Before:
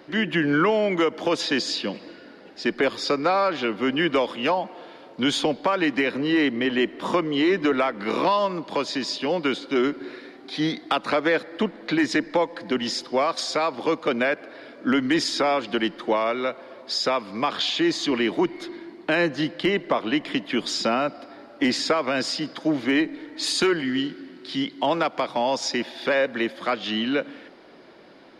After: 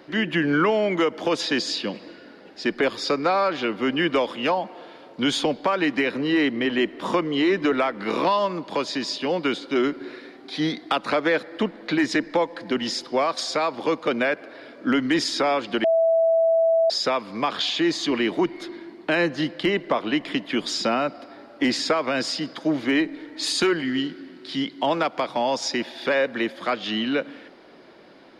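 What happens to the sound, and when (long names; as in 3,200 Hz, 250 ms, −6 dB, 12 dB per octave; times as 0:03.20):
0:15.84–0:16.90: beep over 657 Hz −15.5 dBFS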